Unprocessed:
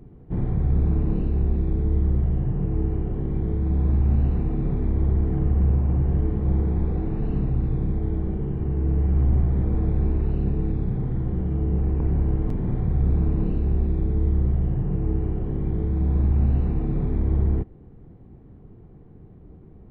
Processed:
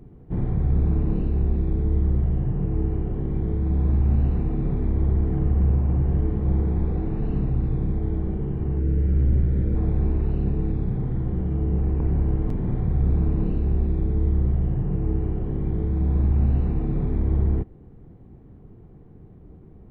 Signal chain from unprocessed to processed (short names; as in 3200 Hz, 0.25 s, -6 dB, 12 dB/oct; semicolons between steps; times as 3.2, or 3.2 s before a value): spectral gain 8.79–9.76, 610–1300 Hz -10 dB